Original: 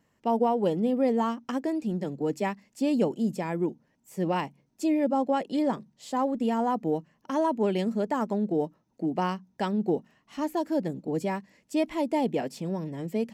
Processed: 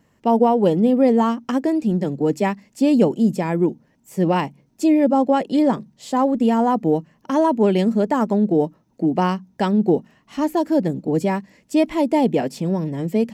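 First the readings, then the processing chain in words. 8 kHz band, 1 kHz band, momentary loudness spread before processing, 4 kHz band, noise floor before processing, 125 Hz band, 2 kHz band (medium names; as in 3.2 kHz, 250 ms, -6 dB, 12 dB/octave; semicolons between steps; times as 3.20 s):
no reading, +7.5 dB, 7 LU, +7.0 dB, -71 dBFS, +10.5 dB, +7.0 dB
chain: bass shelf 400 Hz +4 dB; trim +7 dB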